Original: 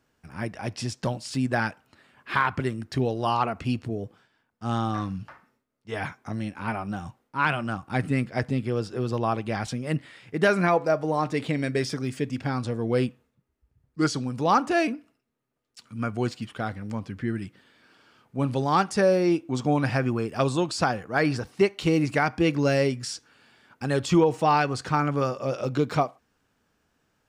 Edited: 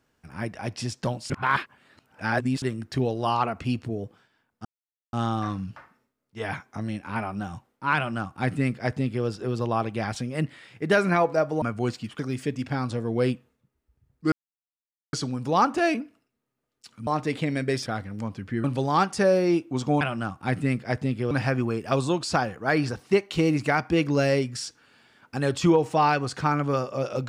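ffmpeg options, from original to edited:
-filter_complex "[0:a]asplit=12[s0][s1][s2][s3][s4][s5][s6][s7][s8][s9][s10][s11];[s0]atrim=end=1.302[s12];[s1]atrim=start=1.298:end=2.622,asetpts=PTS-STARTPTS,areverse[s13];[s2]atrim=start=2.618:end=4.65,asetpts=PTS-STARTPTS,afade=t=out:st=2.028:d=0.004:c=hsin,apad=pad_dur=0.48[s14];[s3]atrim=start=4.65:end=11.142,asetpts=PTS-STARTPTS,afade=t=in:d=0.004:c=hsin[s15];[s4]atrim=start=15.998:end=16.572[s16];[s5]atrim=start=11.928:end=14.06,asetpts=PTS-STARTPTS,afade=t=out:st=2.128:d=0.004:c=hsin,apad=pad_dur=0.81[s17];[s6]atrim=start=14.06:end=16.002,asetpts=PTS-STARTPTS,afade=t=in:d=0.004:c=hsin[s18];[s7]atrim=start=11.138:end=11.932[s19];[s8]atrim=start=16.568:end=17.352[s20];[s9]atrim=start=18.418:end=19.792[s21];[s10]atrim=start=7.478:end=8.782[s22];[s11]atrim=start=19.788[s23];[s12][s13]acrossfade=d=0.004:c1=hsin:c2=hsin[s24];[s14][s15]concat=n=2:v=0:a=1[s25];[s24][s25]acrossfade=d=0.004:c1=hsin:c2=hsin[s26];[s26][s16]acrossfade=d=0.004:c1=hsin:c2=hsin[s27];[s17][s18]concat=n=2:v=0:a=1[s28];[s27][s28]acrossfade=d=0.004:c1=hsin:c2=hsin[s29];[s29][s19]acrossfade=d=0.004:c1=hsin:c2=hsin[s30];[s30][s20]acrossfade=d=0.004:c1=hsin:c2=hsin[s31];[s31][s21]acrossfade=d=0.004:c1=hsin:c2=hsin[s32];[s32][s22]acrossfade=d=0.004:c1=hsin:c2=hsin[s33];[s33][s23]acrossfade=d=0.004:c1=hsin:c2=hsin"

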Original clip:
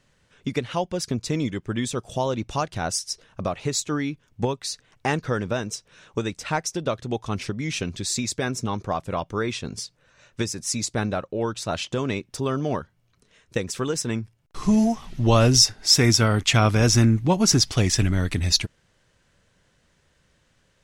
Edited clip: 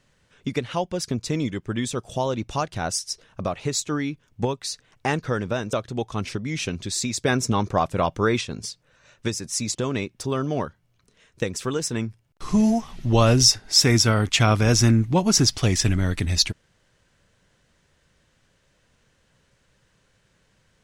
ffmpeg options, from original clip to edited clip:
-filter_complex "[0:a]asplit=5[s0][s1][s2][s3][s4];[s0]atrim=end=5.732[s5];[s1]atrim=start=6.868:end=8.392[s6];[s2]atrim=start=8.388:end=9.552,asetpts=PTS-STARTPTS,volume=1.78[s7];[s3]atrim=start=9.548:end=10.892[s8];[s4]atrim=start=11.888[s9];[s5][s6]acrossfade=d=0.004:c1=hsin:c2=hsin[s10];[s10][s7]acrossfade=d=0.004:c1=hsin:c2=hsin[s11];[s11][s8]acrossfade=d=0.004:c1=hsin:c2=hsin[s12];[s12][s9]acrossfade=d=0.004:c1=hsin:c2=hsin"

